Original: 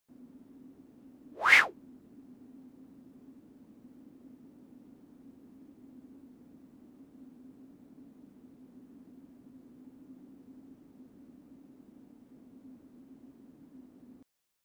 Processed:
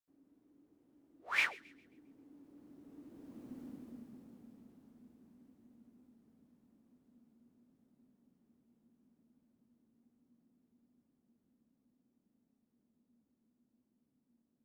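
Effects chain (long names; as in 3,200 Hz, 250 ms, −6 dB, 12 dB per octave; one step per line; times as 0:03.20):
source passing by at 0:03.58, 32 m/s, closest 11 metres
delay with a high-pass on its return 134 ms, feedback 39%, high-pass 1,900 Hz, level −20.5 dB
level +5.5 dB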